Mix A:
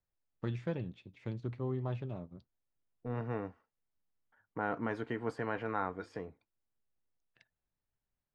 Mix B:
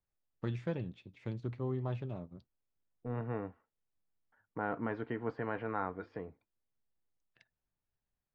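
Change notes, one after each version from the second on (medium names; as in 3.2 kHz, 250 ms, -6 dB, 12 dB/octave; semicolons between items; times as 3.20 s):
second voice: add distance through air 270 m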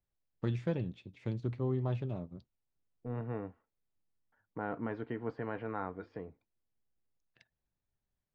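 first voice +3.5 dB; master: add peaking EQ 1.4 kHz -3.5 dB 2.2 oct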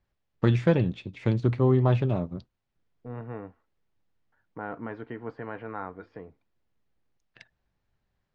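first voice +11.5 dB; master: add peaking EQ 1.4 kHz +3.5 dB 2.2 oct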